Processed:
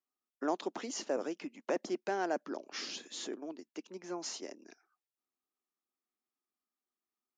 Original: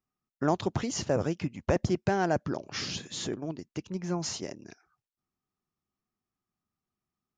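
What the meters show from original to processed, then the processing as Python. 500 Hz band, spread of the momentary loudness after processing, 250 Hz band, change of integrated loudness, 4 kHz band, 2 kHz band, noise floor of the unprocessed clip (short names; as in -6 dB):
-6.0 dB, 11 LU, -8.5 dB, -7.5 dB, -6.0 dB, -6.0 dB, under -85 dBFS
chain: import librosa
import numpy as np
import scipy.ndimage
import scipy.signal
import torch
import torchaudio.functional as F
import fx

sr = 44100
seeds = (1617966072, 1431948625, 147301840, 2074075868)

y = scipy.signal.sosfilt(scipy.signal.butter(6, 250.0, 'highpass', fs=sr, output='sos'), x)
y = y * librosa.db_to_amplitude(-6.0)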